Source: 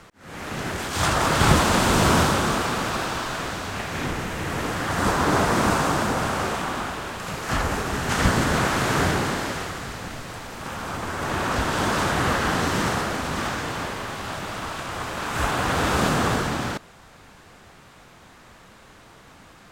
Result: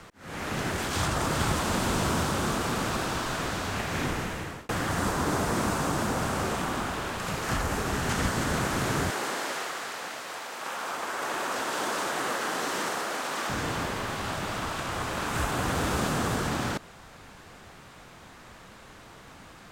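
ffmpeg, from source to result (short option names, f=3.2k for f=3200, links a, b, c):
-filter_complex "[0:a]asettb=1/sr,asplit=3[a][b][c];[a]atrim=end=9.104[d];[b]atrim=start=9.1:end=13.49,asetpts=PTS-STARTPTS,afade=t=in:d=0.004:c=qsin,afade=t=out:st=4.386:d=0.004:c=qsin,highpass=480[e];[c]atrim=start=13.486[f];[d][e]acrossfade=d=0.004:c1=hsin:c2=qsin[g];[g][f]acrossfade=d=0.004:c1=qsin:c2=hsin,asplit=2[h][i];[h]atrim=end=4.69,asetpts=PTS-STARTPTS,afade=t=out:st=4.12:d=0.57[j];[i]atrim=start=4.69,asetpts=PTS-STARTPTS,afade=t=in:d=0.004:c=hsin[k];[j][k]concat=n=2:v=0:a=1,acrossover=split=450|6000[l][m][n];[l]acompressor=threshold=-28dB:ratio=4[o];[m]acompressor=threshold=-30dB:ratio=4[p];[n]acompressor=threshold=-39dB:ratio=4[q];[o][p][q]amix=inputs=3:normalize=0"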